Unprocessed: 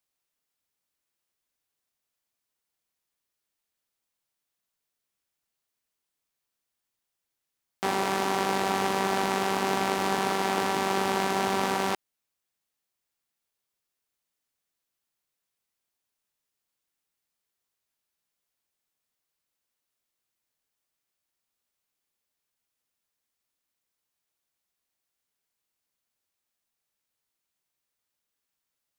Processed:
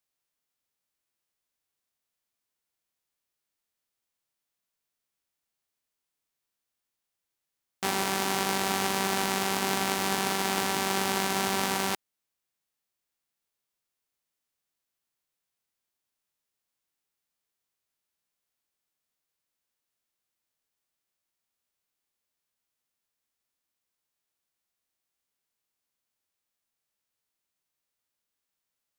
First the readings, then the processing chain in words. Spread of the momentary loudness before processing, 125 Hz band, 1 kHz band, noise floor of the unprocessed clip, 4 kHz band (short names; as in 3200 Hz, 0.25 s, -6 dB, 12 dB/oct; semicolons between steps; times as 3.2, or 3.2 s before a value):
2 LU, -0.5 dB, -3.0 dB, -84 dBFS, +3.0 dB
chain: spectral whitening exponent 0.6; gain -1.5 dB